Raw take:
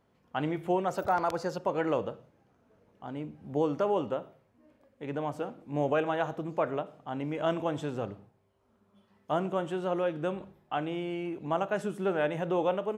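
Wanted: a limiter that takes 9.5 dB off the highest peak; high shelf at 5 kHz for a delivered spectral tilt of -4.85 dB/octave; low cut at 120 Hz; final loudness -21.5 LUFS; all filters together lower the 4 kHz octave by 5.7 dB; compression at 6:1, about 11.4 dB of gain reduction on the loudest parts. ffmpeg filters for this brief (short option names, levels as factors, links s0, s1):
-af "highpass=120,equalizer=f=4000:t=o:g=-7.5,highshelf=f=5000:g=-3,acompressor=threshold=0.0158:ratio=6,volume=13.3,alimiter=limit=0.282:level=0:latency=1"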